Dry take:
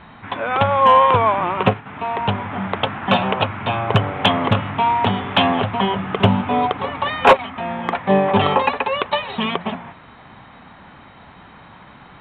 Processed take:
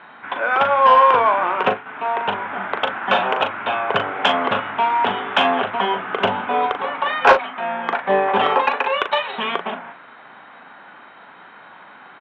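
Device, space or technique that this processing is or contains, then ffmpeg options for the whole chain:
intercom: -filter_complex "[0:a]asettb=1/sr,asplit=3[a][b][c];[a]atrim=end=8.804[d];[b]atrim=start=8.8:end=9.32,asetpts=PTS-STARTPTS,afade=t=in:d=0.004:c=qsin,afade=t=out:st=0.516:d=0.004:c=qsin,highshelf=f=4.2k:g=6.5[e];[c]atrim=start=9.316[f];[d][e]acrossfade=d=0.004:c1=hsin:c2=qsin[g];[g][f]acrossfade=d=0.004:c1=qsin:c2=hsin,highpass=370,lowpass=3.6k,equalizer=f=1.5k:t=o:w=0.26:g=7.5,asoftclip=type=tanh:threshold=-2.5dB,asplit=2[h][i];[i]adelay=39,volume=-8dB[j];[h][j]amix=inputs=2:normalize=0"

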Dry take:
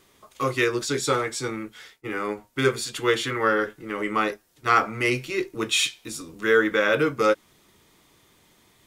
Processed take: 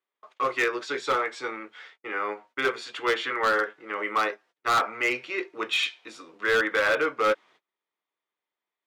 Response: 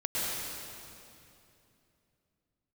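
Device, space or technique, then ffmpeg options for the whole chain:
walkie-talkie: -af "highpass=570,lowpass=2.7k,asoftclip=type=hard:threshold=-20dB,agate=range=-28dB:threshold=-55dB:ratio=16:detection=peak,volume=2dB"

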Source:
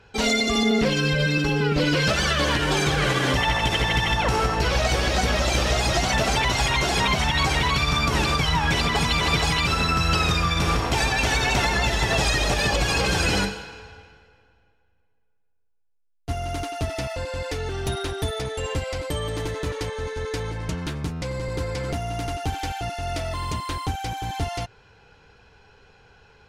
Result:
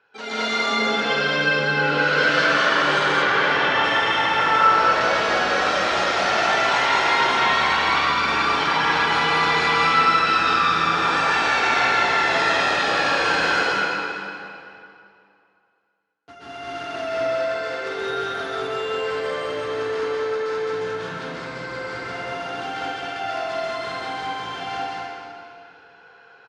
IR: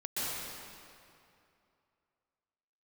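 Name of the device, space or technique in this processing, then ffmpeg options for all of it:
station announcement: -filter_complex "[0:a]highpass=330,lowpass=4.5k,equalizer=f=1.4k:t=o:w=0.59:g=8,aecho=1:1:40.82|209.9:0.355|0.891[a];[1:a]atrim=start_sample=2205[b];[a][b]afir=irnorm=-1:irlink=0,asettb=1/sr,asplit=3[c][d][e];[c]atrim=end=3.224[f];[d]atrim=start=3.22:end=3.84,asetpts=PTS-STARTPTS,afade=t=in:d=0.004:c=qsin,afade=t=out:st=0.616:d=0.004:c=qsin,lowpass=5.8k[g];[e]atrim=start=3.836[h];[f][g]acrossfade=d=0.004:c1=hsin:c2=qsin[i];[i][h]acrossfade=d=0.004:c1=qsin:c2=hsin,volume=-6.5dB"

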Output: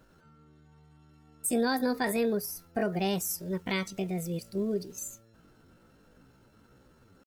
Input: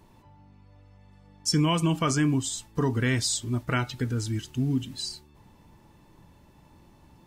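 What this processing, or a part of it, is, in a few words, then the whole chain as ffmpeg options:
chipmunk voice: -filter_complex "[0:a]asettb=1/sr,asplit=3[a][b][c];[a]atrim=end=1.564[d];[b]atrim=start=1.56:end=3.3,asetpts=PTS-STARTPTS,afade=t=in:d=0.004:c=qsin,afade=t=out:st=1.736:d=0.004:c=qsin,equalizer=f=500:t=o:w=0.33:g=7,equalizer=f=2k:t=o:w=0.33:g=-6,equalizer=f=5k:t=o:w=0.33:g=-5[e];[c]atrim=start=3.296[f];[d][e]acrossfade=d=0.004:c1=hsin:c2=qsin[g];[g][f]acrossfade=d=0.004:c1=qsin:c2=hsin,asetrate=68011,aresample=44100,atempo=0.64842,volume=-4.5dB"

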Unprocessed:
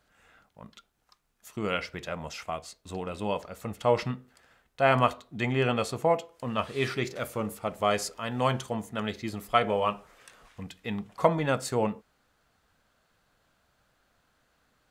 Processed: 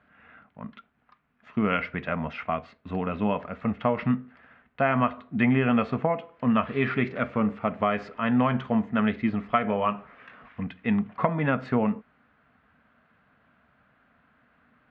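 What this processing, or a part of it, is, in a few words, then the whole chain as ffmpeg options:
bass amplifier: -af "acompressor=threshold=-26dB:ratio=6,highpass=87,equalizer=f=110:t=q:w=4:g=-4,equalizer=f=240:t=q:w=4:g=7,equalizer=f=350:t=q:w=4:g=-8,equalizer=f=520:t=q:w=4:g=-6,equalizer=f=850:t=q:w=4:g=-5,lowpass=f=2.4k:w=0.5412,lowpass=f=2.4k:w=1.3066,volume=8.5dB"

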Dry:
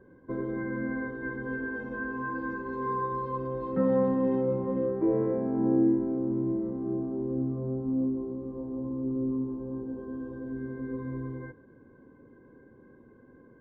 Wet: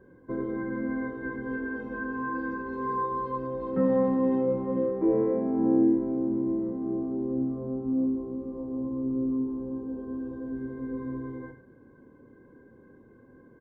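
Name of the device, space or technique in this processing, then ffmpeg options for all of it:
slapback doubling: -filter_complex "[0:a]asplit=3[a][b][c];[b]adelay=27,volume=-9dB[d];[c]adelay=89,volume=-12dB[e];[a][d][e]amix=inputs=3:normalize=0"

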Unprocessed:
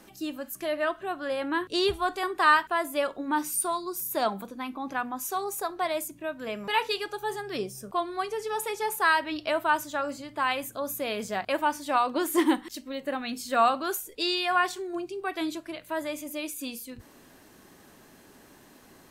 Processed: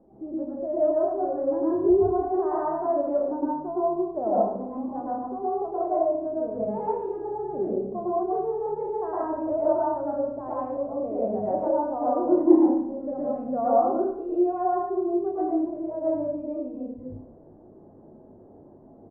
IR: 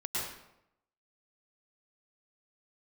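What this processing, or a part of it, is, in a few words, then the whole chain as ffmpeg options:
next room: -filter_complex "[0:a]lowpass=f=670:w=0.5412,lowpass=f=670:w=1.3066[a];[1:a]atrim=start_sample=2205[b];[a][b]afir=irnorm=-1:irlink=0,equalizer=f=660:w=1.7:g=4,asplit=2[c][d];[d]adelay=31,volume=-7.5dB[e];[c][e]amix=inputs=2:normalize=0"

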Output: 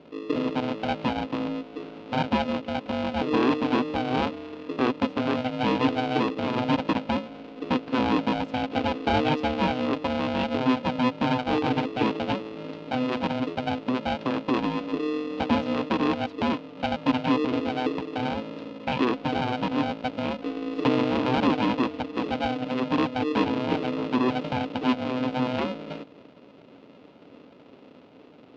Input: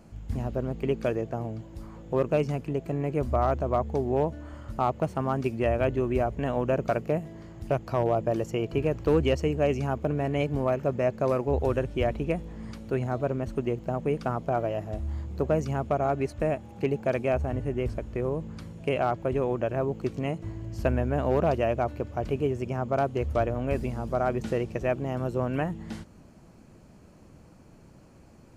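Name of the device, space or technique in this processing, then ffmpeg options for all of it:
ring modulator pedal into a guitar cabinet: -af "aeval=exprs='val(0)*sgn(sin(2*PI*380*n/s))':c=same,highpass=110,equalizer=f=270:t=q:w=4:g=9,equalizer=f=410:t=q:w=4:g=5,equalizer=f=1.1k:t=q:w=4:g=-3,equalizer=f=1.8k:t=q:w=4:g=-7,equalizer=f=2.7k:t=q:w=4:g=3,lowpass=f=4k:w=0.5412,lowpass=f=4k:w=1.3066"

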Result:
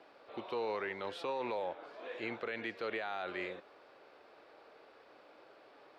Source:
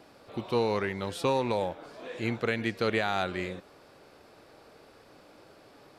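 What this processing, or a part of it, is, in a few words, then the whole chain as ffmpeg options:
DJ mixer with the lows and highs turned down: -filter_complex "[0:a]acrossover=split=330 4100:gain=0.126 1 0.112[a][b][c];[a][b][c]amix=inputs=3:normalize=0,alimiter=level_in=2dB:limit=-24dB:level=0:latency=1:release=27,volume=-2dB,volume=-2.5dB"

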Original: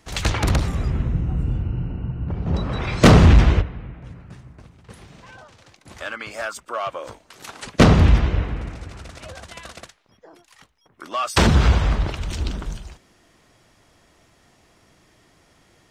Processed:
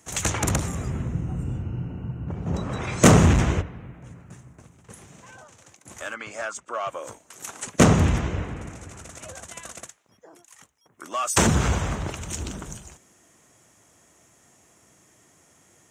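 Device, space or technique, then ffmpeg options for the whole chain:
budget condenser microphone: -filter_complex "[0:a]highpass=90,highshelf=f=5.6k:t=q:w=3:g=6.5,asettb=1/sr,asplit=3[a][b][c];[a]atrim=end=6.144[d];[b]atrim=start=6.14:end=6.88,asetpts=PTS-STARTPTS,afade=t=in:d=0.004:c=qsin,afade=t=out:st=0.736:d=0.004:c=qsin,lowpass=5.5k[e];[c]atrim=start=6.876[f];[d][e]acrossfade=d=0.004:c1=hsin:c2=qsin[g];[g][f]acrossfade=d=0.004:c1=qsin:c2=hsin,volume=-2.5dB"

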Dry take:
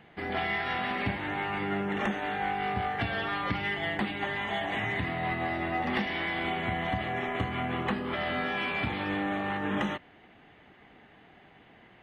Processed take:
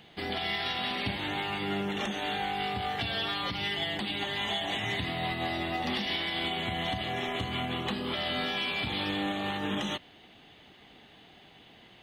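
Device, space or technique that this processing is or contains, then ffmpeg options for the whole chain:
over-bright horn tweeter: -af "highshelf=f=2.7k:t=q:w=1.5:g=11.5,alimiter=limit=-21.5dB:level=0:latency=1:release=131"

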